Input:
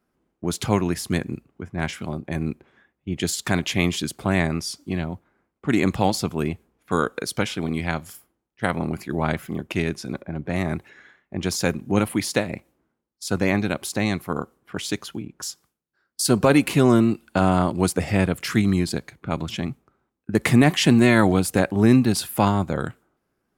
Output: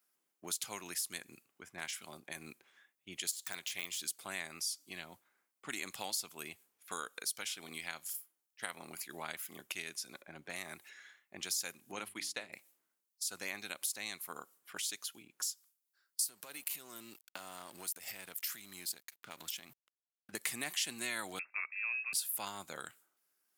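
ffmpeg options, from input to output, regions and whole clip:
-filter_complex "[0:a]asettb=1/sr,asplit=3[s0][s1][s2];[s0]atrim=end=3.314[s3];[s1]atrim=start=3.31:end=4,asetpts=PTS-STARTPTS,afade=t=in:d=0.004:c=qsin,afade=t=out:st=0.686:d=0.004:c=qsin,aeval=exprs='if(lt(val(0),0),0.708*val(0),val(0))':c=same,deesser=0.65,equalizer=f=250:w=1.4:g=-5[s4];[s2]atrim=start=3.996[s5];[s3][s4]acrossfade=d=0.004:c1=hsin:c2=qsin[s6];[s6][s5]acrossfade=d=0.004:c1=qsin:c2=hsin,asettb=1/sr,asplit=3[s7][s8][s9];[s7]atrim=end=11.924[s10];[s8]atrim=start=11.92:end=12.53,asetpts=PTS-STARTPTS,afade=t=in:d=0.004:c=qsin,afade=t=out:st=0.606:d=0.004:c=qsin,agate=range=0.0224:threshold=0.0447:ratio=3:release=100:detection=peak,aemphasis=mode=reproduction:type=50fm,bandreject=f=50:t=h:w=6,bandreject=f=100:t=h:w=6,bandreject=f=150:t=h:w=6,bandreject=f=200:t=h:w=6,bandreject=f=250:t=h:w=6,bandreject=f=300:t=h:w=6,bandreject=f=350:t=h:w=6,bandreject=f=400:t=h:w=6[s11];[s9]atrim=start=12.526[s12];[s10][s11]acrossfade=d=0.004:c1=hsin:c2=qsin[s13];[s13][s12]acrossfade=d=0.004:c1=qsin:c2=hsin,asettb=1/sr,asplit=3[s14][s15][s16];[s14]atrim=end=16.244[s17];[s15]atrim=start=16.24:end=20.32,asetpts=PTS-STARTPTS,afade=t=in:d=0.004:c=qsin,afade=t=out:st=4.076:d=0.004:c=qsin,equalizer=f=14000:w=2.4:g=13,acompressor=threshold=0.0447:ratio=5:attack=3.2:release=140:knee=1:detection=peak,aeval=exprs='sgn(val(0))*max(abs(val(0))-0.00376,0)':c=same[s18];[s16]atrim=start=20.316[s19];[s17][s18]acrossfade=d=0.004:c1=hsin:c2=qsin[s20];[s20][s19]acrossfade=d=0.004:c1=qsin:c2=hsin,asettb=1/sr,asplit=3[s21][s22][s23];[s21]atrim=end=21.394[s24];[s22]atrim=start=21.39:end=22.13,asetpts=PTS-STARTPTS,afade=t=in:d=0.004:c=qsin,afade=t=out:st=0.736:d=0.004:c=qsin,highpass=f=690:p=1,lowpass=f=2400:t=q:w=0.5098,lowpass=f=2400:t=q:w=0.6013,lowpass=f=2400:t=q:w=0.9,lowpass=f=2400:t=q:w=2.563,afreqshift=-2800[s25];[s23]atrim=start=22.126[s26];[s24][s25]acrossfade=d=0.004:c1=hsin:c2=qsin[s27];[s27][s26]acrossfade=d=0.004:c1=qsin:c2=hsin,aderivative,acompressor=threshold=0.00355:ratio=2,volume=1.88"

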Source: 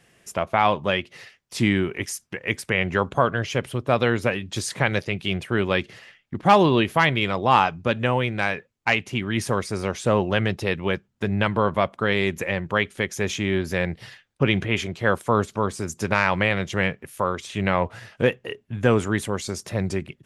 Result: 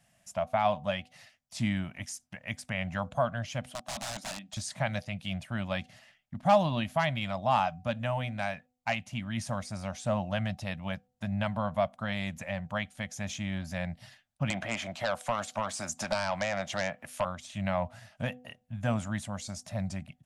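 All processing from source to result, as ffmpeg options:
-filter_complex "[0:a]asettb=1/sr,asplit=3[s0][s1][s2];[s0]atrim=end=3.714[s3];[s1]atrim=start=3.71:end=4.57,asetpts=PTS-STARTPTS,afade=t=in:d=0.004:c=qsin,afade=t=out:st=0.856:d=0.004:c=qsin,highpass=f=210:w=0.5412,highpass=f=210:w=1.3066,aeval=exprs='(mod(11.9*val(0)+1,2)-1)/11.9':c=same[s4];[s2]atrim=start=4.566[s5];[s3][s4]acrossfade=d=0.004:c1=hsin:c2=qsin[s6];[s6][s5]acrossfade=d=0.004:c1=qsin:c2=hsin,asettb=1/sr,asplit=3[s7][s8][s9];[s7]atrim=end=14.504[s10];[s8]atrim=start=14.5:end=17.25,asetpts=PTS-STARTPTS,afade=t=in:d=0.004:c=qsin,afade=t=out:st=2.746:d=0.004:c=qsin,bass=f=250:g=-12,treble=f=4000:g=-3,acrossover=split=270|1800[s11][s12][s13];[s11]acompressor=threshold=0.00562:ratio=4[s14];[s12]acompressor=threshold=0.0398:ratio=4[s15];[s13]acompressor=threshold=0.0158:ratio=4[s16];[s14][s15][s16]amix=inputs=3:normalize=0,aeval=exprs='0.237*sin(PI/2*2.51*val(0)/0.237)':c=same[s17];[s9]atrim=start=17.246[s18];[s10][s17]acrossfade=d=0.004:c1=hsin:c2=qsin[s19];[s19][s18]acrossfade=d=0.004:c1=qsin:c2=hsin,bandreject=f=249.6:t=h:w=4,bandreject=f=499.2:t=h:w=4,bandreject=f=748.8:t=h:w=4,acrossover=split=9400[s20][s21];[s21]acompressor=threshold=0.00126:ratio=4:attack=1:release=60[s22];[s20][s22]amix=inputs=2:normalize=0,firequalizer=gain_entry='entry(230,0);entry(410,-28);entry(610,5);entry(1000,-4);entry(2100,-5);entry(3800,-2);entry(7500,2)':delay=0.05:min_phase=1,volume=0.422"

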